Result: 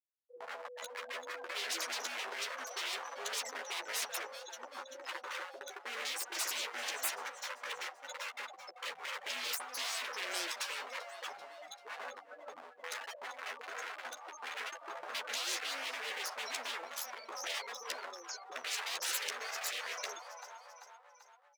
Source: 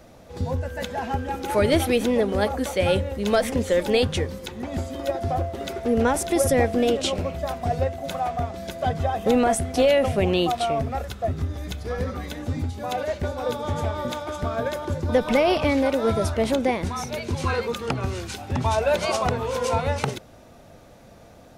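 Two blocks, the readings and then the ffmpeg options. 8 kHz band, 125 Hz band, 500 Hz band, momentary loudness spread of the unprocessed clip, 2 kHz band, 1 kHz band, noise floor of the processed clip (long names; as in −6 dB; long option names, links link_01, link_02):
−5.5 dB, below −40 dB, −26.0 dB, 10 LU, −7.5 dB, −16.5 dB, −59 dBFS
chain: -filter_complex "[0:a]highshelf=frequency=4400:width_type=q:width=1.5:gain=11.5,acrossover=split=5600[link_01][link_02];[link_02]acompressor=threshold=-40dB:ratio=4:attack=1:release=60[link_03];[link_01][link_03]amix=inputs=2:normalize=0,afftfilt=real='re*gte(hypot(re,im),0.0794)':imag='im*gte(hypot(re,im),0.0794)':win_size=1024:overlap=0.75,volume=25dB,asoftclip=hard,volume=-25dB,highpass=frequency=820:width=0.5412,highpass=frequency=820:width=1.3066,asplit=2[link_04][link_05];[link_05]adelay=12,volume=-6dB[link_06];[link_04][link_06]amix=inputs=2:normalize=0,acontrast=32,asplit=2[link_07][link_08];[link_08]aecho=0:1:389|778|1167|1556:0.0891|0.0499|0.0279|0.0157[link_09];[link_07][link_09]amix=inputs=2:normalize=0,afftfilt=real='re*lt(hypot(re,im),0.0501)':imag='im*lt(hypot(re,im),0.0501)':win_size=1024:overlap=0.75"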